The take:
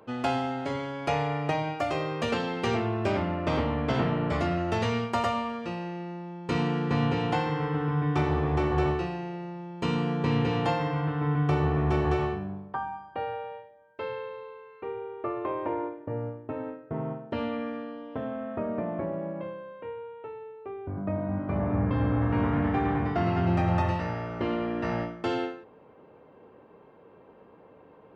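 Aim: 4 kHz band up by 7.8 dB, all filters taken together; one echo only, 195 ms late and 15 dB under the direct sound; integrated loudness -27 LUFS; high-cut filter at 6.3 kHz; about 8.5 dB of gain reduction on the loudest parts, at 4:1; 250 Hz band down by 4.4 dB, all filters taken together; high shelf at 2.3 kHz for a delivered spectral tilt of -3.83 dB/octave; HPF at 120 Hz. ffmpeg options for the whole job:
-af "highpass=120,lowpass=6300,equalizer=f=250:t=o:g=-6,highshelf=f=2300:g=6.5,equalizer=f=4000:t=o:g=5.5,acompressor=threshold=0.0224:ratio=4,aecho=1:1:195:0.178,volume=2.99"

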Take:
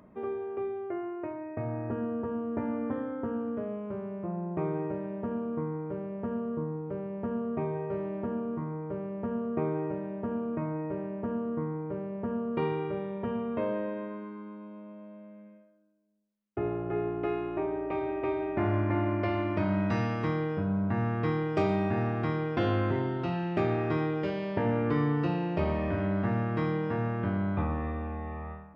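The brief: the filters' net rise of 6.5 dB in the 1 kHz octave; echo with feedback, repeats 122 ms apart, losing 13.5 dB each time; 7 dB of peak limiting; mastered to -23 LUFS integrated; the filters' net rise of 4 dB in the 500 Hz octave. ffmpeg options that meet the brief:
-af "equalizer=f=500:t=o:g=3.5,equalizer=f=1000:t=o:g=7,alimiter=limit=0.119:level=0:latency=1,aecho=1:1:122|244:0.211|0.0444,volume=2.11"

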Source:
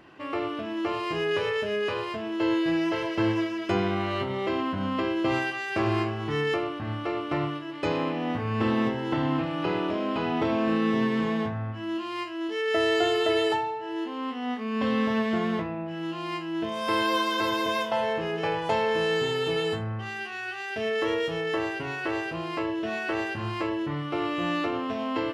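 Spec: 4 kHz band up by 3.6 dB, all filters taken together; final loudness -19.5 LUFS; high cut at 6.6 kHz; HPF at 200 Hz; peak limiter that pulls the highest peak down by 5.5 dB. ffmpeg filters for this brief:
-af "highpass=200,lowpass=6600,equalizer=f=4000:t=o:g=5.5,volume=2.82,alimiter=limit=0.355:level=0:latency=1"

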